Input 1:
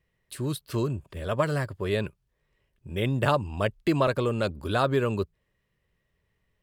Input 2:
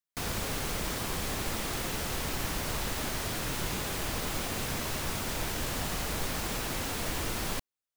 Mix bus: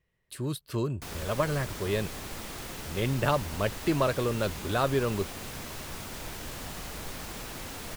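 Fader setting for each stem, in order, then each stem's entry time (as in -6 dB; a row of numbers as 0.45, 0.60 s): -2.5, -6.0 dB; 0.00, 0.85 s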